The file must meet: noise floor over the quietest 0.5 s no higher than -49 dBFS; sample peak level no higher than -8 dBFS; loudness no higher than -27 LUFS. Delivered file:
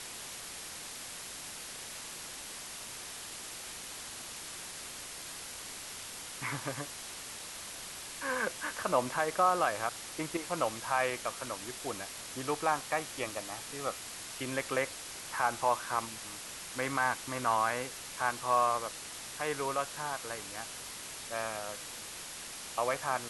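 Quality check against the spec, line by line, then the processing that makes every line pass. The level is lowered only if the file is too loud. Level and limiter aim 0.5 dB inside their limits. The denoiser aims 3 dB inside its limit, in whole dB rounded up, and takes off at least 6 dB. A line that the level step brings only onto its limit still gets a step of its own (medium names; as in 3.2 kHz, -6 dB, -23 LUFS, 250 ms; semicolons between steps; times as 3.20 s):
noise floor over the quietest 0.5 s -44 dBFS: fail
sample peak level -15.5 dBFS: pass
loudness -35.5 LUFS: pass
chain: noise reduction 8 dB, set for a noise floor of -44 dBFS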